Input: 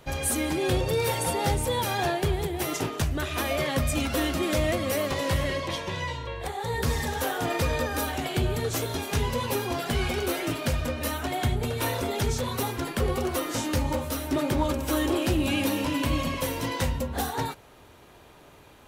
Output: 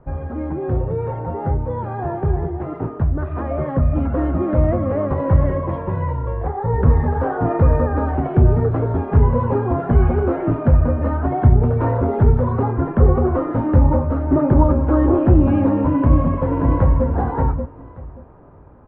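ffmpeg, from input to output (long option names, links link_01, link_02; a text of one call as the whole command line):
ffmpeg -i in.wav -filter_complex "[0:a]asplit=2[link_01][link_02];[link_02]afade=type=in:start_time=1.79:duration=0.01,afade=type=out:start_time=2.2:duration=0.01,aecho=0:1:310|620|930:0.446684|0.111671|0.0279177[link_03];[link_01][link_03]amix=inputs=2:normalize=0,asplit=2[link_04][link_05];[link_05]afade=type=in:start_time=15.93:duration=0.01,afade=type=out:start_time=17.07:duration=0.01,aecho=0:1:580|1160|1740:0.595662|0.119132|0.0238265[link_06];[link_04][link_06]amix=inputs=2:normalize=0,lowpass=frequency=1300:width=0.5412,lowpass=frequency=1300:width=1.3066,lowshelf=frequency=200:gain=9,dynaudnorm=framelen=490:gausssize=17:maxgain=11.5dB" out.wav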